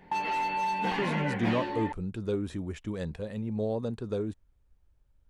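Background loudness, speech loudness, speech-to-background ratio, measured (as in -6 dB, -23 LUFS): -31.0 LUFS, -33.5 LUFS, -2.5 dB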